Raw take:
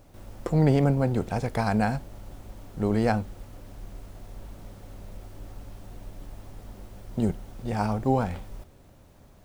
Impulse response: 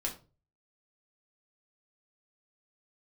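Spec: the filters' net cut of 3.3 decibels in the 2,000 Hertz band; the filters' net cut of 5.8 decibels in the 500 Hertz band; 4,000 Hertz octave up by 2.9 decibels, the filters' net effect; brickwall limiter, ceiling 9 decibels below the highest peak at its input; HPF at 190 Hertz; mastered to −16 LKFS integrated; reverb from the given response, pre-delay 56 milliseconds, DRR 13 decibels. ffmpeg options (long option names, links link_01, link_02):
-filter_complex "[0:a]highpass=190,equalizer=frequency=500:width_type=o:gain=-7,equalizer=frequency=2000:width_type=o:gain=-5,equalizer=frequency=4000:width_type=o:gain=5,alimiter=limit=-22.5dB:level=0:latency=1,asplit=2[link_01][link_02];[1:a]atrim=start_sample=2205,adelay=56[link_03];[link_02][link_03]afir=irnorm=-1:irlink=0,volume=-15.5dB[link_04];[link_01][link_04]amix=inputs=2:normalize=0,volume=18.5dB"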